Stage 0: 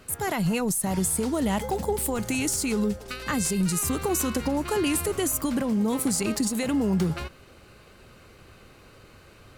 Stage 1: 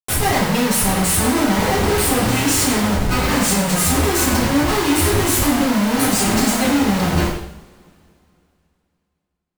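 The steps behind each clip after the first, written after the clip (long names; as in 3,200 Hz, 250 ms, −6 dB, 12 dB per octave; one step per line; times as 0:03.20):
comparator with hysteresis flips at −36 dBFS
coupled-rooms reverb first 0.68 s, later 2.9 s, from −25 dB, DRR −7.5 dB
level +2.5 dB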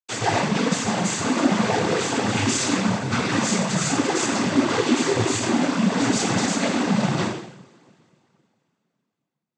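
cochlear-implant simulation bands 16
level −3.5 dB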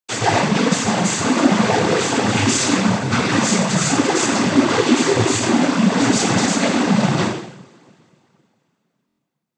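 buffer that repeats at 0:09.07, samples 1,024, times 4
level +5 dB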